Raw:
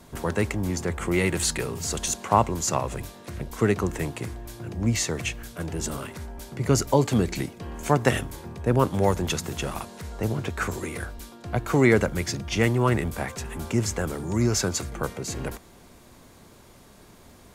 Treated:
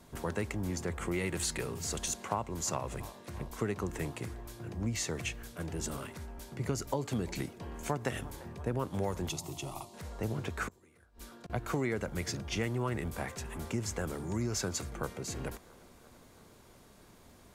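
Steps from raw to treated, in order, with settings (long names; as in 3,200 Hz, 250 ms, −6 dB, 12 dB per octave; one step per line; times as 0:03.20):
delay with a band-pass on its return 341 ms, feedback 72%, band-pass 910 Hz, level −22 dB
downward compressor 6 to 1, threshold −22 dBFS, peak gain reduction 9.5 dB
0:09.29–0:09.94: phaser with its sweep stopped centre 320 Hz, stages 8
0:10.68–0:11.50: gate with flip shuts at −27 dBFS, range −24 dB
level −7 dB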